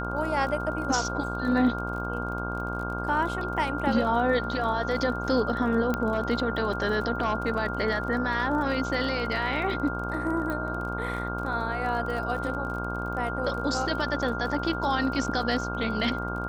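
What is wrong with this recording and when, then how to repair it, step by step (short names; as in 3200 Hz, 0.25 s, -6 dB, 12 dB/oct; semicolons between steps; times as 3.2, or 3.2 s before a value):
buzz 60 Hz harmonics 26 -33 dBFS
crackle 34/s -35 dBFS
tone 1400 Hz -33 dBFS
5.94 pop -14 dBFS
10.5 pop -20 dBFS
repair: de-click; de-hum 60 Hz, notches 26; notch 1400 Hz, Q 30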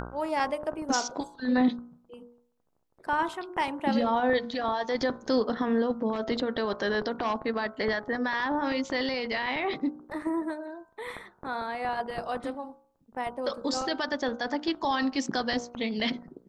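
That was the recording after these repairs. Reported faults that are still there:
5.94 pop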